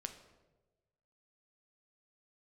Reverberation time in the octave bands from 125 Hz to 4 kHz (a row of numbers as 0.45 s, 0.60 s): 1.6 s, 1.2 s, 1.4 s, 1.0 s, 0.80 s, 0.70 s